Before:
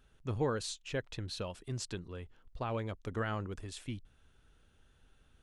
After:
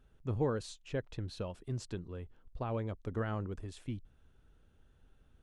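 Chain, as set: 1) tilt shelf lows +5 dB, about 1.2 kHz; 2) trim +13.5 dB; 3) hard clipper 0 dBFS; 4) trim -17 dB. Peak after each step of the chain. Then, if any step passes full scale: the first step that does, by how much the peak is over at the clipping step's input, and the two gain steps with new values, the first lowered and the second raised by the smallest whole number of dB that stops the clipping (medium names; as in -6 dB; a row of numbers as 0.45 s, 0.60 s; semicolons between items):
-17.5 dBFS, -4.0 dBFS, -4.0 dBFS, -21.0 dBFS; nothing clips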